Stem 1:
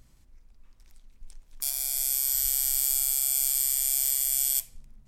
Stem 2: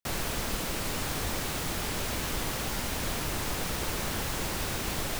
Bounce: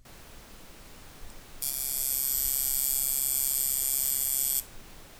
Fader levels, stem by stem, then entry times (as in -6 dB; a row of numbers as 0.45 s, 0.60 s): -2.0 dB, -18.0 dB; 0.00 s, 0.00 s